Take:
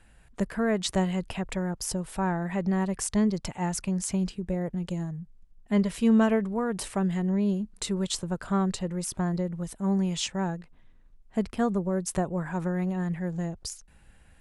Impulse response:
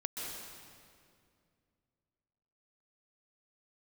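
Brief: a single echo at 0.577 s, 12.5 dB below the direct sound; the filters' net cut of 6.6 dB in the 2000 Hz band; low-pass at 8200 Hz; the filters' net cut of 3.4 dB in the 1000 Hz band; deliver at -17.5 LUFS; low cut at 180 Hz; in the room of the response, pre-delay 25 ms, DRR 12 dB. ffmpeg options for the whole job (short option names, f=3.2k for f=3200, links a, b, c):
-filter_complex "[0:a]highpass=180,lowpass=8.2k,equalizer=f=1k:t=o:g=-3,equalizer=f=2k:t=o:g=-7.5,aecho=1:1:577:0.237,asplit=2[a][b];[1:a]atrim=start_sample=2205,adelay=25[c];[b][c]afir=irnorm=-1:irlink=0,volume=-14dB[d];[a][d]amix=inputs=2:normalize=0,volume=13dB"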